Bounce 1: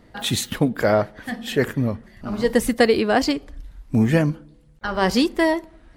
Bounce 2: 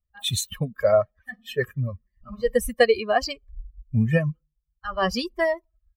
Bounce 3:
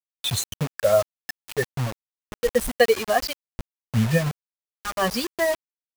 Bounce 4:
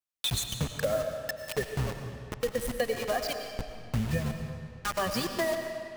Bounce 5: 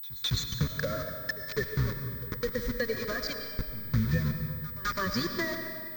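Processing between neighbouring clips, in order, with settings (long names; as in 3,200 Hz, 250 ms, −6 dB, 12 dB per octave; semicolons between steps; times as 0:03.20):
spectral dynamics exaggerated over time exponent 2; comb filter 1.7 ms, depth 85%; level −1.5 dB
bit reduction 5 bits
sub-octave generator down 1 octave, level −5 dB; downward compressor, threshold −27 dBFS, peak gain reduction 15 dB; on a send at −5.5 dB: convolution reverb RT60 2.2 s, pre-delay 65 ms
phaser with its sweep stopped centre 2,800 Hz, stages 6; echo ahead of the sound 209 ms −19 dB; switching amplifier with a slow clock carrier 16,000 Hz; level +3 dB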